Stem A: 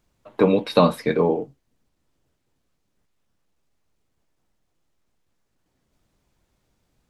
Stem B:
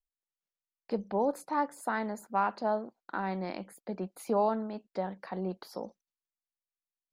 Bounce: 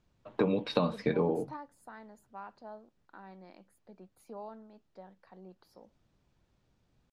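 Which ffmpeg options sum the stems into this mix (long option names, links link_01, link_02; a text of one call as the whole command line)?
ffmpeg -i stem1.wav -i stem2.wav -filter_complex "[0:a]lowpass=5500,equalizer=frequency=120:width_type=o:width=2:gain=4.5,volume=-4.5dB,asplit=2[link_01][link_02];[1:a]volume=-10dB[link_03];[link_02]apad=whole_len=318446[link_04];[link_03][link_04]sidechaingate=range=-7dB:threshold=-46dB:ratio=16:detection=peak[link_05];[link_01][link_05]amix=inputs=2:normalize=0,bandreject=frequency=2100:width=21,acompressor=threshold=-24dB:ratio=12" out.wav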